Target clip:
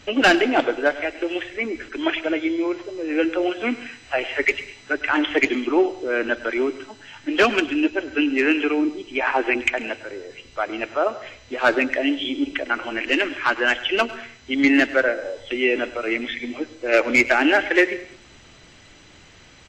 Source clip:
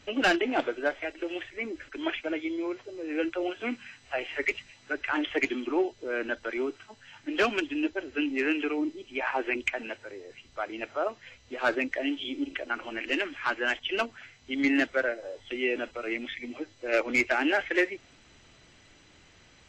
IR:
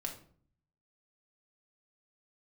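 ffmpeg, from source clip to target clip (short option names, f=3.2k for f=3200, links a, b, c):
-filter_complex "[0:a]aecho=1:1:102|204|306:0.126|0.0466|0.0172,asplit=2[a][b];[1:a]atrim=start_sample=2205,adelay=136[c];[b][c]afir=irnorm=-1:irlink=0,volume=-18.5dB[d];[a][d]amix=inputs=2:normalize=0,volume=8.5dB"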